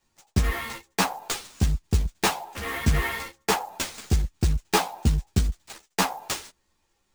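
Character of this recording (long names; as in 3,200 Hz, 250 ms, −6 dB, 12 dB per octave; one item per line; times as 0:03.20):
aliases and images of a low sample rate 14,000 Hz, jitter 20%
a shimmering, thickened sound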